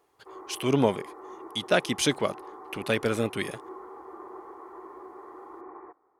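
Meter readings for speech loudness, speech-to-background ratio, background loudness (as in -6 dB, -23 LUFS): -28.0 LUFS, 16.5 dB, -44.5 LUFS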